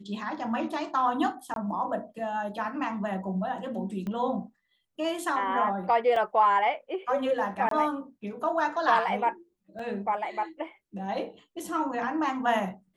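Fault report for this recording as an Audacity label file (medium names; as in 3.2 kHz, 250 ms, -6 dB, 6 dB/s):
1.540000	1.560000	dropout 22 ms
4.070000	4.070000	pop -24 dBFS
6.160000	6.160000	dropout 3.3 ms
7.690000	7.710000	dropout 23 ms
9.790000	9.790000	dropout 4.1 ms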